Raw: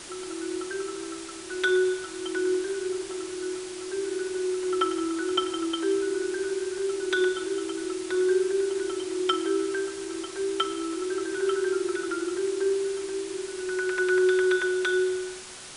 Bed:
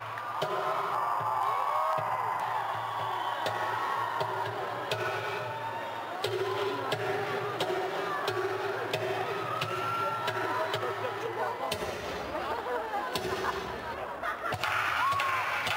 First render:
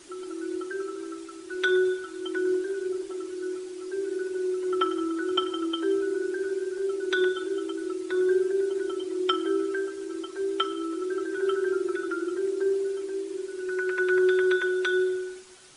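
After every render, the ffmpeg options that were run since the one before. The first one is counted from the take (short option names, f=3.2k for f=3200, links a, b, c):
-af "afftdn=nr=11:nf=-39"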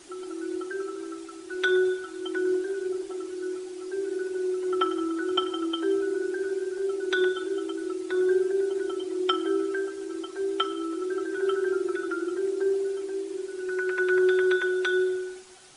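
-af "equalizer=f=750:t=o:w=0.21:g=8.5"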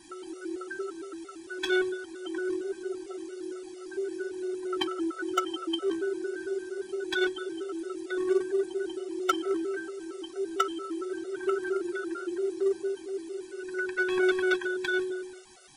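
-filter_complex "[0:a]asplit=2[a][b];[b]acrusher=bits=2:mix=0:aa=0.5,volume=-4.5dB[c];[a][c]amix=inputs=2:normalize=0,afftfilt=real='re*gt(sin(2*PI*4.4*pts/sr)*(1-2*mod(floor(b*sr/1024/380),2)),0)':imag='im*gt(sin(2*PI*4.4*pts/sr)*(1-2*mod(floor(b*sr/1024/380),2)),0)':win_size=1024:overlap=0.75"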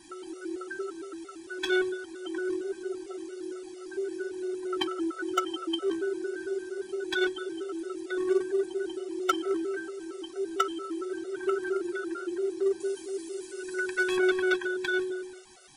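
-filter_complex "[0:a]asettb=1/sr,asplit=3[a][b][c];[a]atrim=end=12.804[d];[b]atrim=start=12.8:end=14.17,asetpts=PTS-STARTPTS,afade=t=in:d=0.004:c=qsin,afade=t=out:st=1.366:d=0.004:c=qsin,highshelf=f=4.5k:g=11[e];[c]atrim=start=14.166[f];[d][e]acrossfade=d=0.004:c1=hsin:c2=qsin[g];[g][f]acrossfade=d=0.004:c1=qsin:c2=hsin"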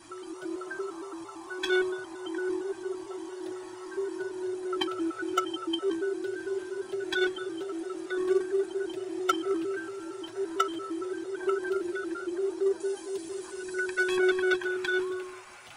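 -filter_complex "[1:a]volume=-19.5dB[a];[0:a][a]amix=inputs=2:normalize=0"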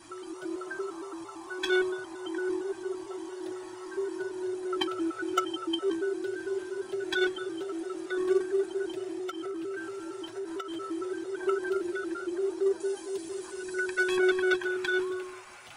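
-filter_complex "[0:a]asettb=1/sr,asplit=3[a][b][c];[a]atrim=end=9.124[d];[b]atrim=start=9.12:end=10.81,asetpts=PTS-STARTPTS,afade=t=in:d=0.004:c=qsin,afade=t=out:st=1.686:d=0.004:c=qsin,acompressor=threshold=-32dB:ratio=12:attack=3.2:release=140:knee=1:detection=peak[e];[c]atrim=start=10.806[f];[d][e]acrossfade=d=0.004:c1=hsin:c2=qsin[g];[g][f]acrossfade=d=0.004:c1=qsin:c2=hsin"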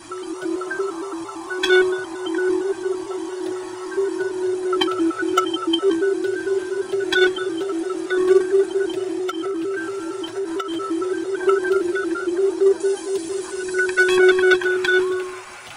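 -af "volume=11dB,alimiter=limit=-3dB:level=0:latency=1"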